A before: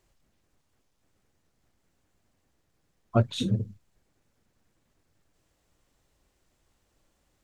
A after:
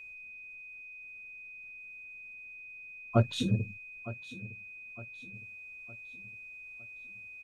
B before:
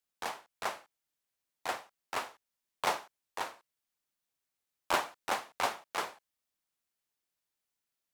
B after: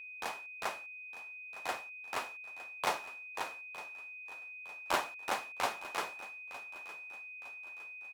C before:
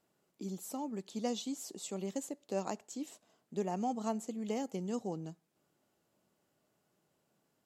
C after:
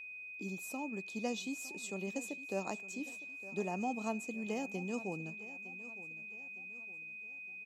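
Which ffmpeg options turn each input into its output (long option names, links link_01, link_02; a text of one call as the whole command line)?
ffmpeg -i in.wav -af "aecho=1:1:910|1820|2730|3640:0.15|0.0643|0.0277|0.0119,aeval=exprs='val(0)+0.00708*sin(2*PI*2500*n/s)':channel_layout=same,volume=-2dB" out.wav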